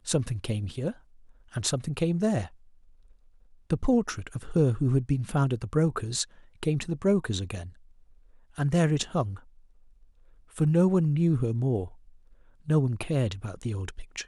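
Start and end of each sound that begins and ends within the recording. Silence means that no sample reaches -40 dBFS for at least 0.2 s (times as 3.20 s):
1.54–2.47 s
3.70–6.24 s
6.63–7.69 s
8.58–9.39 s
10.56–11.88 s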